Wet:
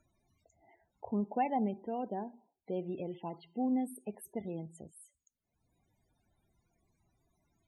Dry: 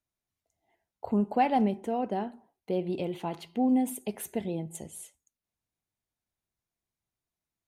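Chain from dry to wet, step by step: upward compressor, threshold -43 dBFS; loudest bins only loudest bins 32; 2.75–4.99 s: tape noise reduction on one side only decoder only; trim -7 dB

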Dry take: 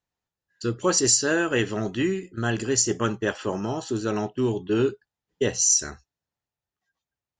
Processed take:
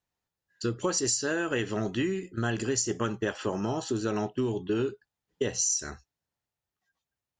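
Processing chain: compression, threshold -25 dBFS, peak gain reduction 9.5 dB

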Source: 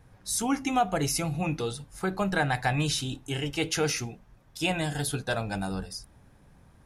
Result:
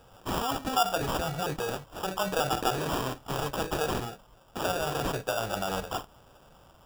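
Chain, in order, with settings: resonant low shelf 420 Hz -10.5 dB, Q 1.5; in parallel at +1 dB: compressor with a negative ratio -37 dBFS, ratio -1; on the sum: sample-rate reducer 2.1 kHz, jitter 0%; trim -3 dB

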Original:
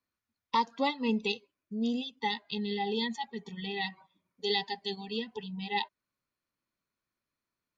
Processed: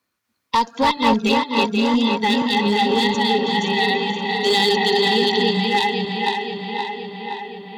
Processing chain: backward echo that repeats 242 ms, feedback 49%, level -1.5 dB; high-pass 140 Hz 6 dB/octave; in parallel at -1 dB: peak limiter -24 dBFS, peak gain reduction 11 dB; on the sum: one-sided clip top -21 dBFS; on a send: tape echo 521 ms, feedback 74%, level -4 dB, low-pass 3.9 kHz; 4.46–5.51 s: on the sum: level flattener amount 70%; trim +7.5 dB

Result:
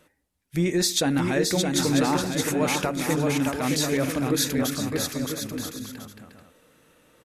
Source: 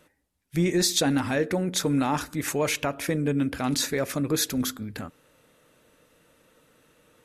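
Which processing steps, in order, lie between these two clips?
bouncing-ball echo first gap 620 ms, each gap 0.6×, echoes 5

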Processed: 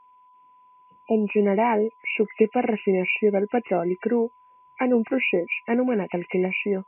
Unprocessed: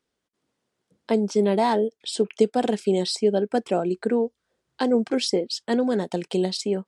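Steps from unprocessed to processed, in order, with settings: knee-point frequency compression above 1.9 kHz 4:1; spectral selection erased 1.05–1.28 s, 890–2400 Hz; whistle 1 kHz -52 dBFS

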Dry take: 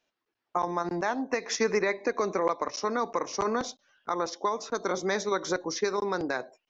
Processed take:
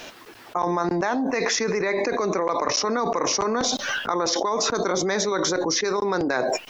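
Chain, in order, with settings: level flattener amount 100%; trim -1 dB

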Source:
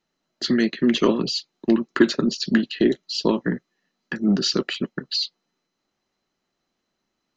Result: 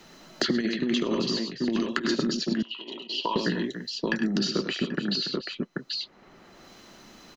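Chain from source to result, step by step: multi-tap echo 72/101/284/784 ms -13.5/-8.5/-17/-13.5 dB; compressor with a negative ratio -19 dBFS, ratio -0.5; 2.62–3.36 s: two resonant band-passes 1.7 kHz, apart 1.6 oct; three bands compressed up and down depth 100%; trim -5 dB

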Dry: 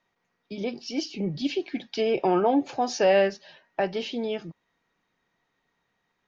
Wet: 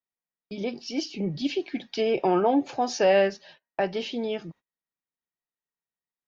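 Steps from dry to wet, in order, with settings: gate -49 dBFS, range -26 dB

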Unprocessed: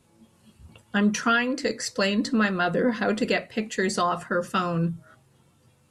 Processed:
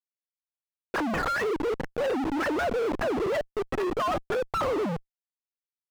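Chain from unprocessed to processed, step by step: formants replaced by sine waves; Schmitt trigger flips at -33.5 dBFS; overdrive pedal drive 20 dB, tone 1.2 kHz, clips at -20 dBFS

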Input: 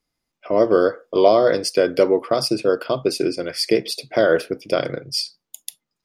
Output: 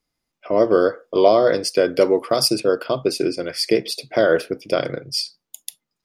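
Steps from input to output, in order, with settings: 2.01–2.60 s: treble shelf 5.5 kHz +11.5 dB

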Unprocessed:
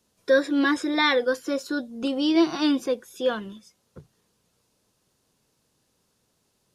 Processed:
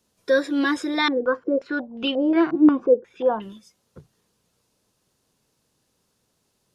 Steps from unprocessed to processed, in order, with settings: 1.08–3.42 s: step-sequenced low-pass 5.6 Hz 340–3000 Hz

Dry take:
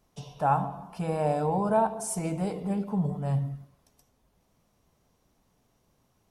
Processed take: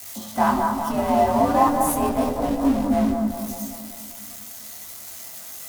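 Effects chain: zero-crossing glitches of -29 dBFS; bass shelf 130 Hz +9 dB; frequency shift +54 Hz; small resonant body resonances 600/1800 Hz, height 12 dB, ringing for 60 ms; in parallel at -7 dB: Schmitt trigger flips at -22.5 dBFS; on the sum: tape speed +11%; bucket-brigade echo 198 ms, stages 2048, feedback 59%, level -4 dB; detune thickener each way 12 cents; trim +6 dB

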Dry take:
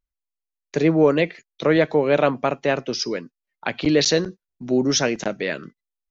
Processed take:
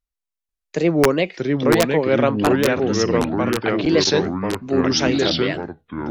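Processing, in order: integer overflow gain 6 dB; wow and flutter 130 cents; ever faster or slower copies 490 ms, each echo -3 st, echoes 3

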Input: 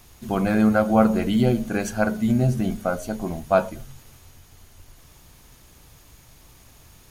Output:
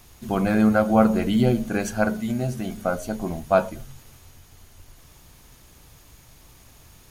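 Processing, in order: 2.20–2.77 s: bass shelf 380 Hz -8 dB

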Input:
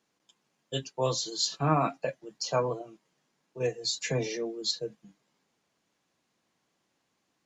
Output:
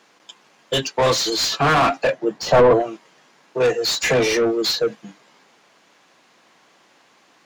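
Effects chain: one-sided wavefolder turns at -20.5 dBFS; overdrive pedal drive 25 dB, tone 2.7 kHz, clips at -15.5 dBFS; 2.12–2.80 s: tilt shelf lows +6.5 dB, about 1.4 kHz; trim +6.5 dB

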